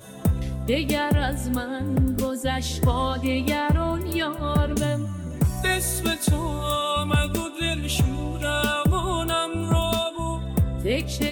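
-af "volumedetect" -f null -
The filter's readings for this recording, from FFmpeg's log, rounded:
mean_volume: -23.8 dB
max_volume: -11.2 dB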